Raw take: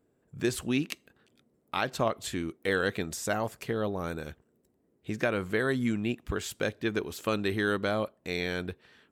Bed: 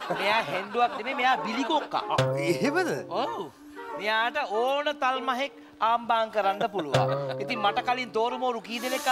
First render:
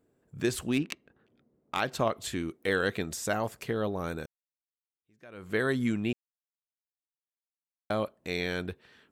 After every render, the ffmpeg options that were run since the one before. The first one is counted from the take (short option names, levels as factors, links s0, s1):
-filter_complex "[0:a]asettb=1/sr,asplit=3[s0][s1][s2];[s0]atrim=end=0.704[s3];[s1]atrim=start=0.7:end=1.8,asetpts=PTS-STARTPTS,afade=t=in:d=0.004:c=qsin,afade=t=out:st=1.096:d=0.004:c=qsin,adynamicsmooth=sensitivity=6:basefreq=2100[s4];[s2]atrim=start=1.796[s5];[s3][s4]acrossfade=d=0.004:c1=hsin:c2=qsin[s6];[s6][s5]acrossfade=d=0.004:c1=qsin:c2=hsin,asplit=4[s7][s8][s9][s10];[s7]atrim=end=4.26,asetpts=PTS-STARTPTS,afade=t=out:st=4.256:d=0.004:c=hsin[s11];[s8]atrim=start=4.26:end=6.13,asetpts=PTS-STARTPTS,afade=t=in:d=1.3:c=exp,afade=t=out:st=1.866:d=0.004:c=hsin[s12];[s9]atrim=start=6.13:end=7.9,asetpts=PTS-STARTPTS,volume=0[s13];[s10]atrim=start=7.9,asetpts=PTS-STARTPTS,afade=t=in:d=0.004:c=hsin[s14];[s11][s12][s13][s14]concat=n=4:v=0:a=1"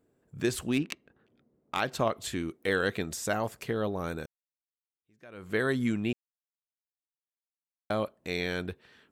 -af anull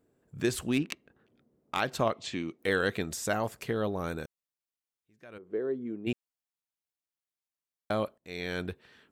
-filter_complex "[0:a]asettb=1/sr,asplit=3[s0][s1][s2];[s0]atrim=end=2.134[s3];[s1]atrim=start=2.13:end=2.59,asetpts=PTS-STARTPTS,afade=t=in:d=0.004:c=qsin,afade=t=out:st=0.456:d=0.004:c=qsin,highpass=140,equalizer=f=400:t=q:w=4:g=-4,equalizer=f=1500:t=q:w=4:g=-8,equalizer=f=2500:t=q:w=4:g=4,lowpass=f=6400:w=0.5412,lowpass=f=6400:w=1.3066[s4];[s2]atrim=start=2.586[s5];[s3][s4]acrossfade=d=0.004:c1=hsin:c2=qsin[s6];[s6][s5]acrossfade=d=0.004:c1=qsin:c2=hsin,asplit=3[s7][s8][s9];[s7]afade=t=out:st=5.37:d=0.02[s10];[s8]bandpass=f=390:t=q:w=2.6,afade=t=in:st=5.37:d=0.02,afade=t=out:st=6.06:d=0.02[s11];[s9]afade=t=in:st=6.06:d=0.02[s12];[s10][s11][s12]amix=inputs=3:normalize=0,asplit=2[s13][s14];[s13]atrim=end=8.18,asetpts=PTS-STARTPTS,afade=t=out:st=8.176:d=0.004:c=hsin:silence=0.0944061[s15];[s14]atrim=start=8.18,asetpts=PTS-STARTPTS,afade=t=in:d=0.44:silence=0.0944061[s16];[s15][s16]concat=n=2:v=0:a=1"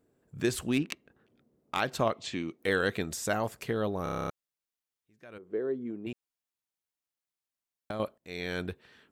-filter_complex "[0:a]asettb=1/sr,asplit=3[s0][s1][s2];[s0]atrim=end=5.894[s3];[s1]atrim=start=5.89:end=8,asetpts=PTS-STARTPTS,afade=t=in:d=0.004:c=qsin,afade=t=out:st=2.106:d=0.004:c=qsin,acompressor=threshold=0.0251:ratio=6:attack=3.2:release=140:knee=1:detection=peak[s4];[s2]atrim=start=7.996[s5];[s3][s4]acrossfade=d=0.004:c1=hsin:c2=qsin[s6];[s6][s5]acrossfade=d=0.004:c1=qsin:c2=hsin,asplit=10[s7][s8][s9][s10][s11][s12][s13][s14][s15][s16];[s7]atrim=end=4.062[s17];[s8]atrim=start=4.028:end=4.062[s18];[s9]atrim=start=4.028:end=4.062[s19];[s10]atrim=start=4.028:end=4.062[s20];[s11]atrim=start=4.028:end=4.062[s21];[s12]atrim=start=4.028:end=4.062[s22];[s13]atrim=start=4.028:end=4.062[s23];[s14]atrim=start=4.028:end=4.062[s24];[s15]atrim=start=4.028:end=4.062[s25];[s16]atrim=start=4.298[s26];[s17][s18]acrossfade=d=0.004:c1=hsin:c2=hsin[s27];[s27][s19]acrossfade=d=0.004:c1=hsin:c2=hsin[s28];[s28][s20]acrossfade=d=0.004:c1=hsin:c2=hsin[s29];[s29][s21]acrossfade=d=0.004:c1=hsin:c2=hsin[s30];[s30][s22]acrossfade=d=0.004:c1=hsin:c2=hsin[s31];[s31][s23]acrossfade=d=0.004:c1=hsin:c2=hsin[s32];[s32][s24]acrossfade=d=0.004:c1=hsin:c2=hsin[s33];[s33][s25]acrossfade=d=0.004:c1=hsin:c2=hsin[s34];[s34][s26]acrossfade=d=0.004:c1=hsin:c2=hsin"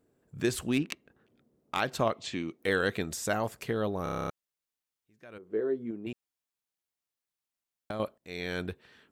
-filter_complex "[0:a]asettb=1/sr,asplit=3[s0][s1][s2];[s0]atrim=end=5.504[s3];[s1]atrim=start=5.5:end=5.91,asetpts=PTS-STARTPTS,afade=t=in:d=0.004:c=qsin,afade=t=out:st=0.406:d=0.004:c=qsin,asplit=2[s4][s5];[s5]adelay=18,volume=0.501[s6];[s4][s6]amix=inputs=2:normalize=0,atrim=end_sample=18081[s7];[s2]atrim=start=5.906[s8];[s3][s7]acrossfade=d=0.004:c1=hsin:c2=qsin[s9];[s9][s8]acrossfade=d=0.004:c1=qsin:c2=hsin"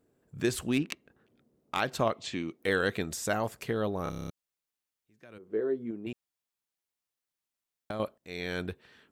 -filter_complex "[0:a]asettb=1/sr,asplit=3[s0][s1][s2];[s0]atrim=end=4.094[s3];[s1]atrim=start=4.09:end=5.48,asetpts=PTS-STARTPTS,afade=t=in:d=0.004:c=qsin,afade=t=out:st=1.386:d=0.004:c=qsin,acrossover=split=350|3000[s4][s5][s6];[s5]acompressor=threshold=0.00355:ratio=6:attack=3.2:release=140:knee=2.83:detection=peak[s7];[s4][s7][s6]amix=inputs=3:normalize=0[s8];[s2]atrim=start=5.476[s9];[s3][s8]acrossfade=d=0.004:c1=hsin:c2=qsin[s10];[s10][s9]acrossfade=d=0.004:c1=qsin:c2=hsin"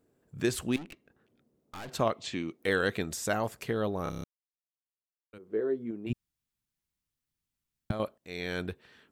-filter_complex "[0:a]asettb=1/sr,asplit=3[s0][s1][s2];[s0]atrim=end=0.764[s3];[s1]atrim=start=0.76:end=1.89,asetpts=PTS-STARTPTS,afade=t=in:d=0.004:c=qsin,afade=t=out:st=1.126:d=0.004:c=qsin,aeval=exprs='(tanh(100*val(0)+0.5)-tanh(0.5))/100':c=same[s4];[s2]atrim=start=1.886[s5];[s3][s4]acrossfade=d=0.004:c1=hsin:c2=qsin[s6];[s6][s5]acrossfade=d=0.004:c1=qsin:c2=hsin,asplit=3[s7][s8][s9];[s7]afade=t=out:st=6.09:d=0.02[s10];[s8]asubboost=boost=9.5:cutoff=180,afade=t=in:st=6.09:d=0.02,afade=t=out:st=7.91:d=0.02[s11];[s9]afade=t=in:st=7.91:d=0.02[s12];[s10][s11][s12]amix=inputs=3:normalize=0,asplit=3[s13][s14][s15];[s13]atrim=end=4.24,asetpts=PTS-STARTPTS,afade=t=out:st=4.236:d=0.004:c=hsin[s16];[s14]atrim=start=4.24:end=5.33,asetpts=PTS-STARTPTS,volume=0[s17];[s15]atrim=start=5.33,asetpts=PTS-STARTPTS,afade=t=in:d=0.004:c=hsin[s18];[s16][s17][s18]concat=n=3:v=0:a=1"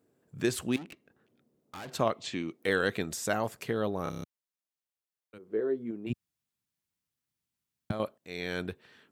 -af "highpass=93"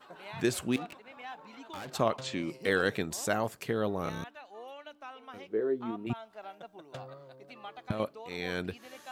-filter_complex "[1:a]volume=0.0944[s0];[0:a][s0]amix=inputs=2:normalize=0"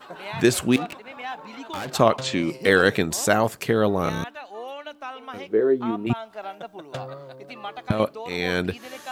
-af "volume=3.35"